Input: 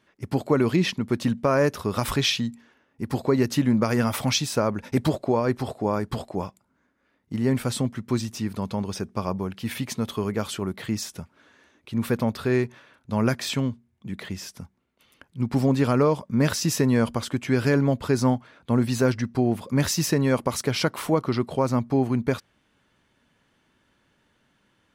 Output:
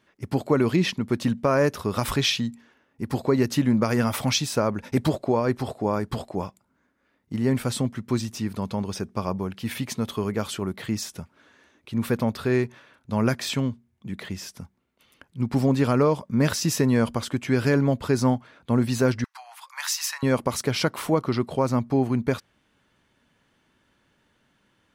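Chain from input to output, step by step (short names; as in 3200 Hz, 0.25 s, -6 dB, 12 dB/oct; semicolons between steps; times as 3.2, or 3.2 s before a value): 19.24–20.23 steep high-pass 870 Hz 48 dB/oct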